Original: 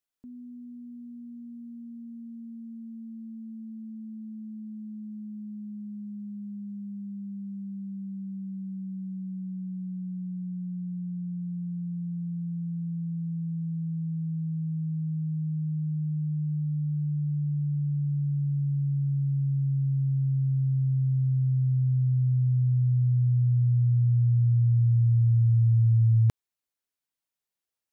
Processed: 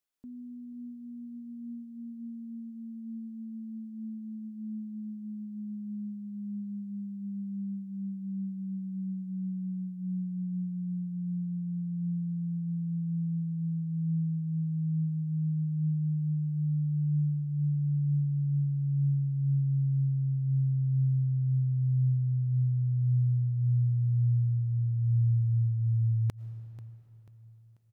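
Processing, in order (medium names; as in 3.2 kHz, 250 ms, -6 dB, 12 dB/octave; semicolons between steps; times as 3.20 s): compression, threshold -25 dBFS, peak gain reduction 6.5 dB; feedback delay 489 ms, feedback 40%, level -17 dB; on a send at -15 dB: reverberation RT60 3.6 s, pre-delay 70 ms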